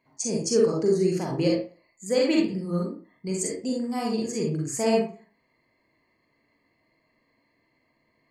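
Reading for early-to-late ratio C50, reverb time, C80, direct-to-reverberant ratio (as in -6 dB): 2.0 dB, 0.40 s, 8.0 dB, -2.5 dB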